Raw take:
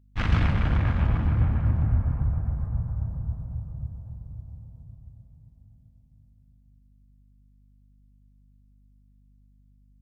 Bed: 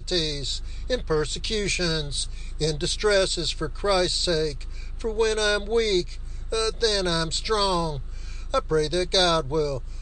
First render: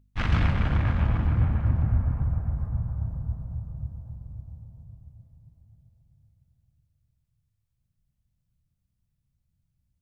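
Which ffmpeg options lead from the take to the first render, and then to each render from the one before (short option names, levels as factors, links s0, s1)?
-af "bandreject=f=50:t=h:w=4,bandreject=f=100:t=h:w=4,bandreject=f=150:t=h:w=4,bandreject=f=200:t=h:w=4,bandreject=f=250:t=h:w=4,bandreject=f=300:t=h:w=4,bandreject=f=350:t=h:w=4,bandreject=f=400:t=h:w=4,bandreject=f=450:t=h:w=4,bandreject=f=500:t=h:w=4"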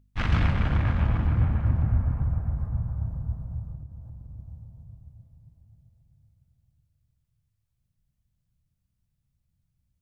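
-filter_complex "[0:a]asettb=1/sr,asplit=3[s0][s1][s2];[s0]atrim=end=3.754[s3];[s1]atrim=start=3.75:end=4.4,asetpts=PTS-STARTPTS,afade=t=in:d=0.004:c=qsin,afade=t=out:st=0.646:d=0.004:c=qsin,acompressor=threshold=0.0126:ratio=3:attack=3.2:release=140:knee=1:detection=peak[s4];[s2]atrim=start=4.396[s5];[s3][s4]acrossfade=d=0.004:c1=hsin:c2=qsin[s6];[s6][s5]acrossfade=d=0.004:c1=qsin:c2=hsin"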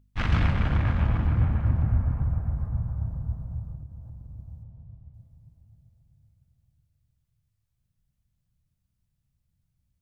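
-filter_complex "[0:a]asettb=1/sr,asplit=3[s0][s1][s2];[s0]atrim=end=4.634[s3];[s1]atrim=start=4.63:end=5.14,asetpts=PTS-STARTPTS,afade=t=in:d=0.004:c=qsin,afade=t=out:st=0.506:d=0.004:c=qsin,lowpass=3100[s4];[s2]atrim=start=5.136[s5];[s3][s4]acrossfade=d=0.004:c1=hsin:c2=qsin[s6];[s6][s5]acrossfade=d=0.004:c1=qsin:c2=hsin"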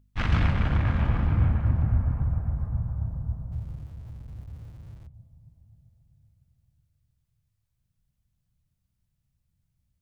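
-filter_complex "[0:a]asettb=1/sr,asplit=3[s0][s1][s2];[s0]atrim=end=0.904[s3];[s1]atrim=start=0.9:end=1.52,asetpts=PTS-STARTPTS,afade=t=in:d=0.004:c=qsin,afade=t=out:st=0.616:d=0.004:c=qsin,asplit=2[s4][s5];[s5]adelay=33,volume=0.501[s6];[s4][s6]amix=inputs=2:normalize=0,atrim=end_sample=27342[s7];[s2]atrim=start=1.516[s8];[s3][s7]acrossfade=d=0.004:c1=hsin:c2=qsin[s9];[s9][s8]acrossfade=d=0.004:c1=qsin:c2=hsin,asettb=1/sr,asplit=3[s10][s11][s12];[s10]atrim=end=3.524[s13];[s11]atrim=start=3.52:end=5.07,asetpts=PTS-STARTPTS,afade=t=in:d=0.004:c=qsin,afade=t=out:st=1.546:d=0.004:c=qsin,aeval=exprs='val(0)+0.5*0.00355*sgn(val(0))':c=same[s14];[s12]atrim=start=5.066[s15];[s13][s14]acrossfade=d=0.004:c1=hsin:c2=qsin[s16];[s16][s15]acrossfade=d=0.004:c1=qsin:c2=hsin"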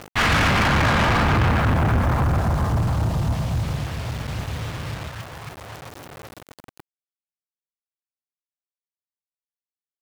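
-filter_complex "[0:a]acrusher=bits=9:mix=0:aa=0.000001,asplit=2[s0][s1];[s1]highpass=f=720:p=1,volume=63.1,asoftclip=type=tanh:threshold=0.282[s2];[s0][s2]amix=inputs=2:normalize=0,lowpass=f=3900:p=1,volume=0.501"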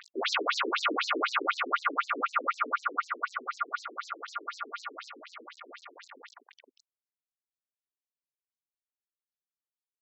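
-af "aeval=exprs='val(0)*sin(2*PI*1300*n/s)':c=same,afftfilt=real='re*between(b*sr/1024,310*pow(5800/310,0.5+0.5*sin(2*PI*4*pts/sr))/1.41,310*pow(5800/310,0.5+0.5*sin(2*PI*4*pts/sr))*1.41)':imag='im*between(b*sr/1024,310*pow(5800/310,0.5+0.5*sin(2*PI*4*pts/sr))/1.41,310*pow(5800/310,0.5+0.5*sin(2*PI*4*pts/sr))*1.41)':win_size=1024:overlap=0.75"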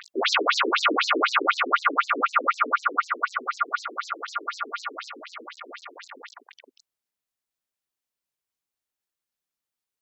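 -af "volume=2.24"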